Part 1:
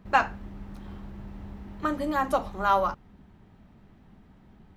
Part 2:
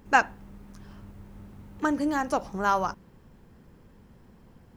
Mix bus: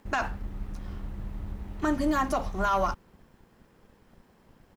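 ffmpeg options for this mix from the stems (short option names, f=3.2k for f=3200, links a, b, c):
-filter_complex "[0:a]aeval=exprs='sgn(val(0))*max(abs(val(0))-0.00282,0)':c=same,lowshelf=f=87:g=11.5,asoftclip=type=tanh:threshold=-16dB,volume=0.5dB[a];[1:a]highpass=f=460:p=1,adelay=0.4,volume=0dB[b];[a][b]amix=inputs=2:normalize=0,alimiter=limit=-17dB:level=0:latency=1:release=49"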